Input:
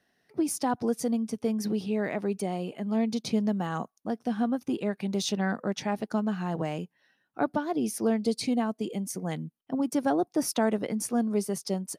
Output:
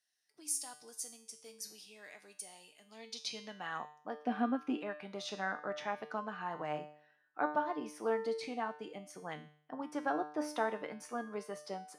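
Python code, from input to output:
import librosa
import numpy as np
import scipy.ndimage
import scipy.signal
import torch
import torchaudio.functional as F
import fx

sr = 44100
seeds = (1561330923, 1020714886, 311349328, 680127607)

y = fx.graphic_eq_15(x, sr, hz=(250, 630, 2500), db=(12, 5, 7), at=(4.22, 4.79))
y = fx.filter_sweep_bandpass(y, sr, from_hz=8000.0, to_hz=1300.0, start_s=2.8, end_s=3.94, q=1.1)
y = fx.comb_fb(y, sr, f0_hz=150.0, decay_s=0.56, harmonics='all', damping=0.0, mix_pct=80)
y = F.gain(torch.from_numpy(y), 10.0).numpy()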